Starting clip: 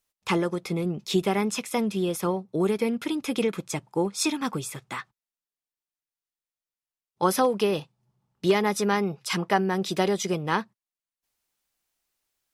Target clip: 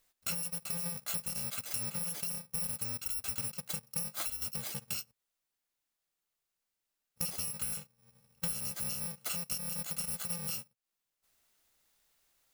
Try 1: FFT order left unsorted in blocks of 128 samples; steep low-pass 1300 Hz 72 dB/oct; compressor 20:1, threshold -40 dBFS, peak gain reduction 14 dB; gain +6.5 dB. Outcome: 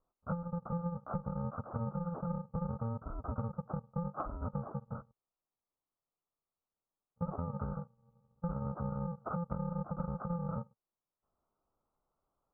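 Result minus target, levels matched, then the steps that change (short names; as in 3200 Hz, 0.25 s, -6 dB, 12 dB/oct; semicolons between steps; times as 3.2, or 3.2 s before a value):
1000 Hz band +13.0 dB
remove: steep low-pass 1300 Hz 72 dB/oct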